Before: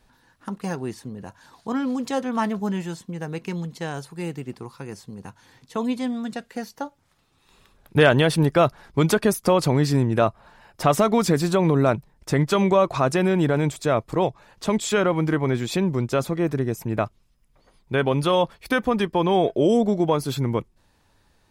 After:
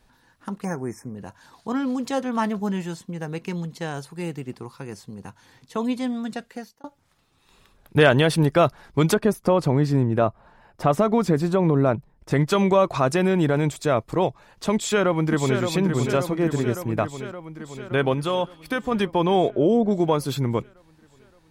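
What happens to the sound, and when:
0:00.65–0:01.16: time-frequency box erased 2,500–5,100 Hz
0:06.43–0:06.84: fade out
0:09.14–0:12.31: high-shelf EQ 2,200 Hz −11 dB
0:14.74–0:15.60: delay throw 570 ms, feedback 70%, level −6.5 dB
0:18.14–0:18.92: tuned comb filter 94 Hz, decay 1.9 s, mix 40%
0:19.50–0:19.91: low-pass filter 1,400 Hz 6 dB per octave

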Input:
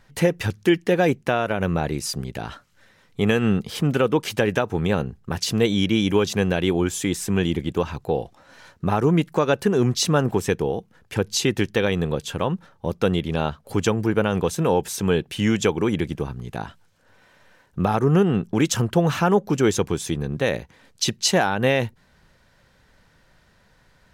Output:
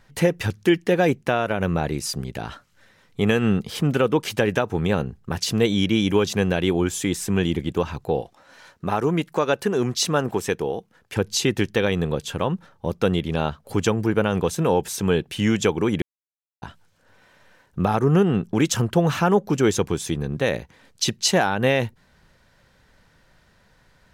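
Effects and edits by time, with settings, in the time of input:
0:08.21–0:11.17: low-shelf EQ 210 Hz −8.5 dB
0:16.02–0:16.62: silence

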